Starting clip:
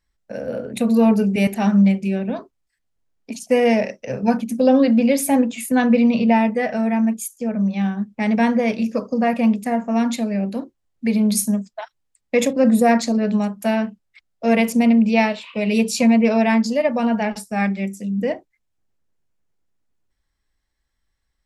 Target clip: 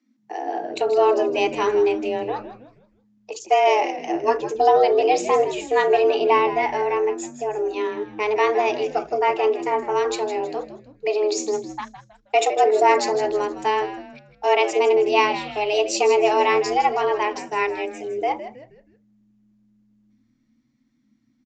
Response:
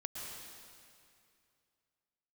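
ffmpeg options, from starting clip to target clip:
-filter_complex "[0:a]lowshelf=frequency=140:width_type=q:width=3:gain=7,afreqshift=210,asplit=2[link_01][link_02];[link_02]asplit=4[link_03][link_04][link_05][link_06];[link_03]adelay=159,afreqshift=-96,volume=-12dB[link_07];[link_04]adelay=318,afreqshift=-192,volume=-20.6dB[link_08];[link_05]adelay=477,afreqshift=-288,volume=-29.3dB[link_09];[link_06]adelay=636,afreqshift=-384,volume=-37.9dB[link_10];[link_07][link_08][link_09][link_10]amix=inputs=4:normalize=0[link_11];[link_01][link_11]amix=inputs=2:normalize=0,aresample=16000,aresample=44100"

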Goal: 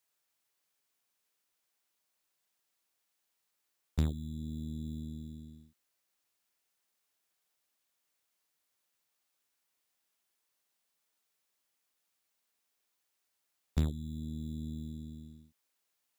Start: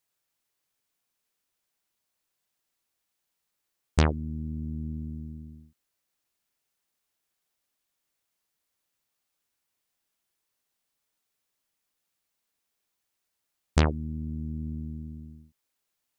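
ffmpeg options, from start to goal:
ffmpeg -i in.wav -filter_complex "[0:a]lowshelf=frequency=200:gain=-8.5,acrossover=split=270[link_01][link_02];[link_01]acrusher=samples=12:mix=1:aa=0.000001[link_03];[link_02]acompressor=threshold=-46dB:ratio=8[link_04];[link_03][link_04]amix=inputs=2:normalize=0" out.wav

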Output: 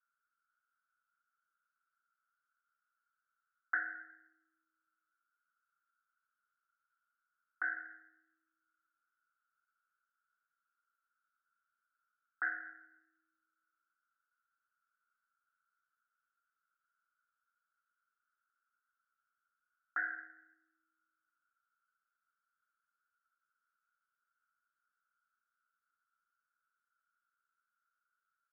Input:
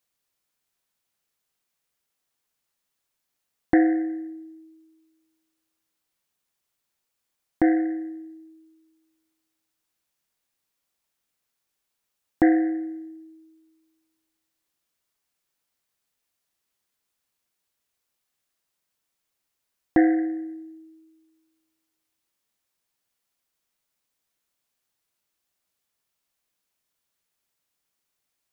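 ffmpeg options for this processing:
ffmpeg -i in.wav -filter_complex "[0:a]asuperpass=centerf=1400:order=4:qfactor=7.6,asplit=2[link_01][link_02];[link_02]adelay=16,volume=-11.5dB[link_03];[link_01][link_03]amix=inputs=2:normalize=0,volume=13dB" out.wav

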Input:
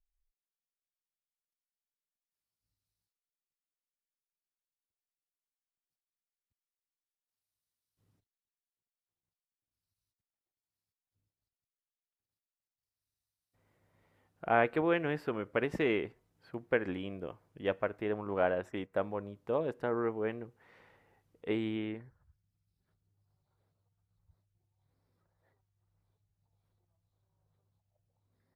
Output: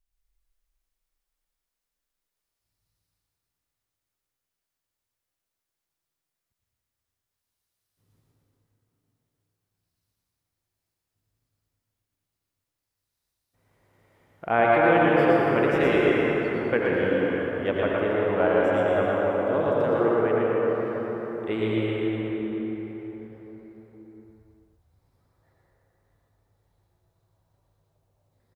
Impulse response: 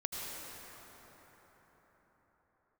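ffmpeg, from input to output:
-filter_complex "[0:a]aecho=1:1:117:0.668[link_01];[1:a]atrim=start_sample=2205[link_02];[link_01][link_02]afir=irnorm=-1:irlink=0,volume=6.5dB"

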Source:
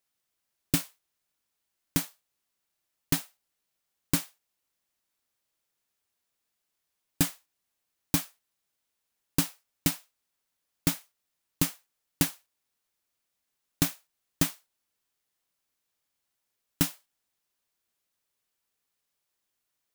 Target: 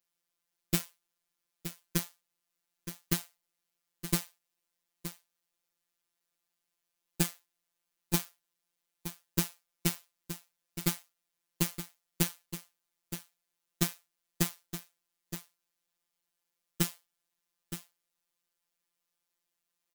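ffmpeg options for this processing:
ffmpeg -i in.wav -af "aecho=1:1:920:0.282,afftfilt=real='hypot(re,im)*cos(PI*b)':imag='0':win_size=1024:overlap=0.75" out.wav

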